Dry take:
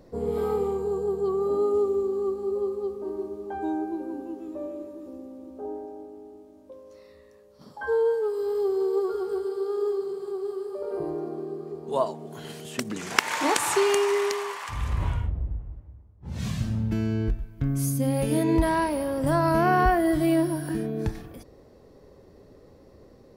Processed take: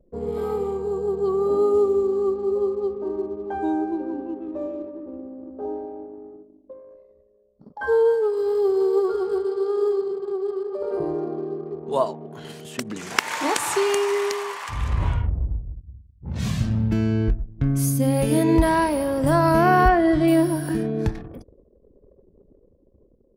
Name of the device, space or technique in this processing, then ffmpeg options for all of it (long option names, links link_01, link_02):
voice memo with heavy noise removal: -filter_complex "[0:a]asettb=1/sr,asplit=3[link_01][link_02][link_03];[link_01]atrim=end=19.884[link_04];[link_02]atrim=start=19.88:end=20.28,asetpts=PTS-STARTPTS,afade=type=in:duration=0.004:curve=qsin,afade=type=out:start_time=0.396:duration=0.004:curve=qsin,lowpass=4900[link_05];[link_03]atrim=start=20.276[link_06];[link_04][link_05]acrossfade=duration=0.004:curve1=hsin:curve2=qsin[link_07];[link_07][link_06]acrossfade=duration=0.004:curve1=qsin:curve2=hsin,anlmdn=0.0631,dynaudnorm=framelen=210:gausssize=11:maxgain=5dB"